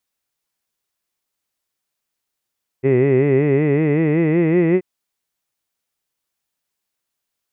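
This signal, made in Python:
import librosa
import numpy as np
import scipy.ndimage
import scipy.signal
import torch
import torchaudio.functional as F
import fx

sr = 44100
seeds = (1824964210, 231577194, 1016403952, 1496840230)

y = fx.vowel(sr, seeds[0], length_s=1.98, word='hid', hz=128.0, glide_st=5.5, vibrato_hz=5.3, vibrato_st=1.1)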